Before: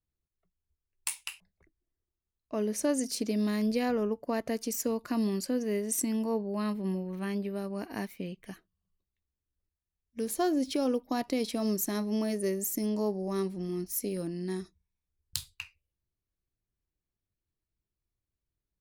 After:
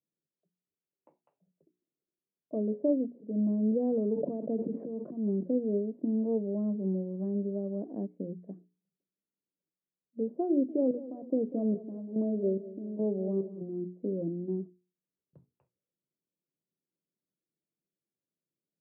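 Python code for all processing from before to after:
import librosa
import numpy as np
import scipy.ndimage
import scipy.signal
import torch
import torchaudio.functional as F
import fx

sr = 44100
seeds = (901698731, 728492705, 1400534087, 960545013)

y = fx.chain(x, sr, fx.auto_swell(attack_ms=181.0),
    fx.air_absorb(metres=400.0),
    fx.sustainer(db_per_s=23.0), at=(3.15, 5.43))
y = fx.chain(y, sr, fx.chopper(hz=1.2, depth_pct=65, duty_pct=50),
    fx.echo_feedback(ms=194, feedback_pct=44, wet_db=-16), at=(10.49, 13.61))
y = scipy.signal.sosfilt(scipy.signal.ellip(3, 1.0, 80, [160.0, 590.0], 'bandpass', fs=sr, output='sos'), y)
y = fx.hum_notches(y, sr, base_hz=60, count=7)
y = F.gain(torch.from_numpy(y), 2.5).numpy()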